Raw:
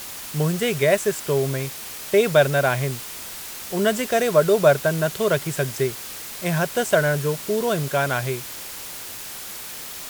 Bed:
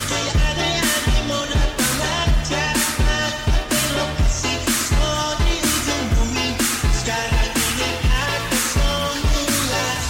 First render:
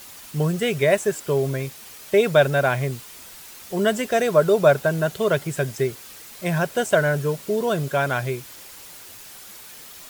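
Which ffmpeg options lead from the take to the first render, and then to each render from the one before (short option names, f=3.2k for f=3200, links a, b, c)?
-af "afftdn=nr=8:nf=-35"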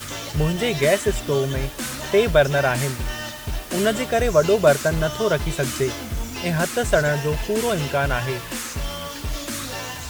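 -filter_complex "[1:a]volume=-10dB[a];[0:a][a]amix=inputs=2:normalize=0"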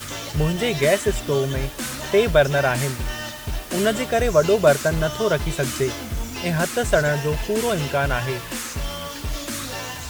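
-af anull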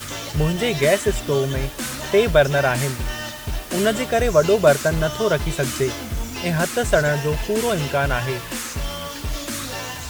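-af "volume=1dB"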